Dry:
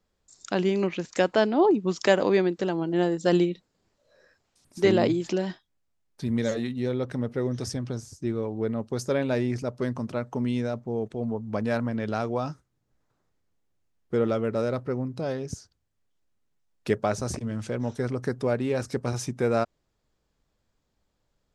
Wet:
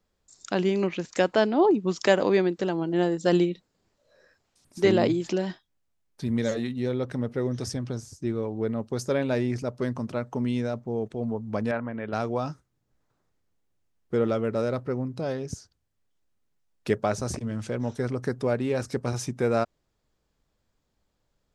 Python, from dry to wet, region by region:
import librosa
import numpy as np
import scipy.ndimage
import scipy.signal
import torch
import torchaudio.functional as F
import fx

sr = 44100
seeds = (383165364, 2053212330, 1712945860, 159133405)

y = fx.chain(x, sr, fx.lowpass(hz=2600.0, slope=24),
    fx.low_shelf(hz=280.0, db=-8.5), at=(11.71, 12.13))